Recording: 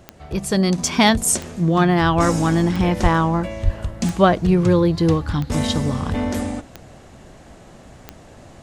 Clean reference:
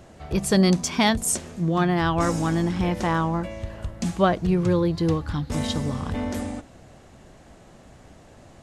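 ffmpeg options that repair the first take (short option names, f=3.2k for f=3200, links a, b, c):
-filter_complex "[0:a]adeclick=t=4,asplit=3[a][b][c];[a]afade=t=out:st=3.02:d=0.02[d];[b]highpass=f=140:w=0.5412,highpass=f=140:w=1.3066,afade=t=in:st=3.02:d=0.02,afade=t=out:st=3.14:d=0.02[e];[c]afade=t=in:st=3.14:d=0.02[f];[d][e][f]amix=inputs=3:normalize=0,asplit=3[g][h][i];[g]afade=t=out:st=3.64:d=0.02[j];[h]highpass=f=140:w=0.5412,highpass=f=140:w=1.3066,afade=t=in:st=3.64:d=0.02,afade=t=out:st=3.76:d=0.02[k];[i]afade=t=in:st=3.76:d=0.02[l];[j][k][l]amix=inputs=3:normalize=0,asetnsamples=n=441:p=0,asendcmd='0.78 volume volume -5.5dB',volume=0dB"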